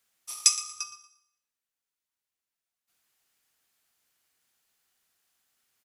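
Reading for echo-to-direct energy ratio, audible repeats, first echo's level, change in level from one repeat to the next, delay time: -15.5 dB, 2, -16.0 dB, -11.5 dB, 0.117 s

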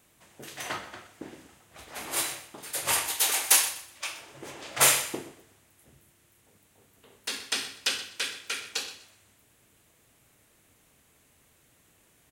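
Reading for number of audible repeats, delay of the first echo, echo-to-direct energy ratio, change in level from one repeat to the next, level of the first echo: 2, 0.124 s, -14.5 dB, -11.5 dB, -15.0 dB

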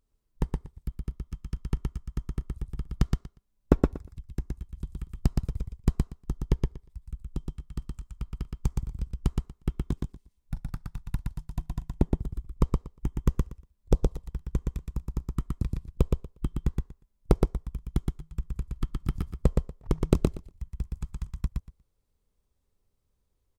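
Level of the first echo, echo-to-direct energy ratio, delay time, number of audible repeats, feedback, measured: -3.0 dB, -3.0 dB, 0.119 s, 2, 15%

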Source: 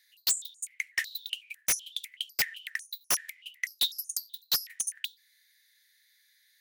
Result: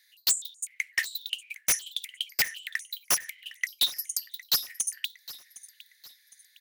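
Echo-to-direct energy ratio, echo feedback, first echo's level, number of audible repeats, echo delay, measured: -17.0 dB, 41%, -18.0 dB, 3, 0.76 s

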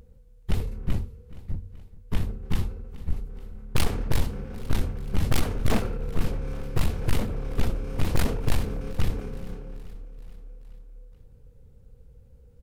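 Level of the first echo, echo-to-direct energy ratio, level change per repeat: -19.0 dB, -17.0 dB, -4.5 dB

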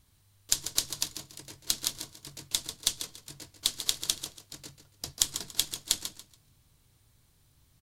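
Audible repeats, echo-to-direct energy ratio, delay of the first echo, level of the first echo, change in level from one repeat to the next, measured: 2, -10.5 dB, 0.142 s, -11.0 dB, -12.0 dB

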